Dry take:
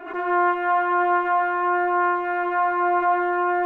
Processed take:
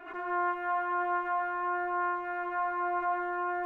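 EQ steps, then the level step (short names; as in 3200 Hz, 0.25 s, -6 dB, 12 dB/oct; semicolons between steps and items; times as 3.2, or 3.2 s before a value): dynamic EQ 3100 Hz, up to -6 dB, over -39 dBFS, Q 0.88; bell 420 Hz -7 dB 2 oct; -6.0 dB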